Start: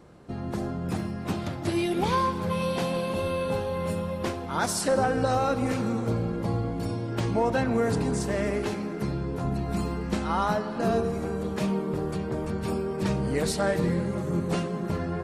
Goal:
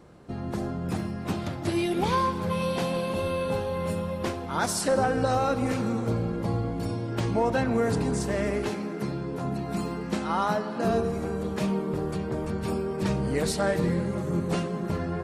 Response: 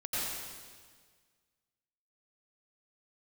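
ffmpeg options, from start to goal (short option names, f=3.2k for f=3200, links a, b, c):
-filter_complex "[0:a]asettb=1/sr,asplit=3[a][b][c];[a]atrim=end=8.694[d];[b]atrim=start=8.69:end=10.85,asetpts=PTS-STARTPTS,afade=t=in:d=0.004:c=qsin,afade=t=out:st=2.156:d=0.004:c=qsin,highpass=130[e];[c]atrim=start=10.846[f];[d][e]acrossfade=d=0.004:c1=hsin:c2=qsin[g];[g][f]acrossfade=d=0.004:c1=qsin:c2=hsin"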